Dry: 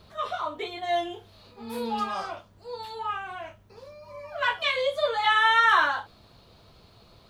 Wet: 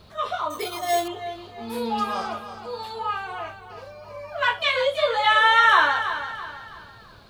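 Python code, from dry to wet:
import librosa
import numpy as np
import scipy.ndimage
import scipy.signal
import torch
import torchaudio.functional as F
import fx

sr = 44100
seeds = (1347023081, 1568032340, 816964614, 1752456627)

y = fx.echo_feedback(x, sr, ms=329, feedback_pct=40, wet_db=-10.5)
y = fx.resample_bad(y, sr, factor=6, down='none', up='hold', at=(0.5, 1.08))
y = y * 10.0 ** (3.5 / 20.0)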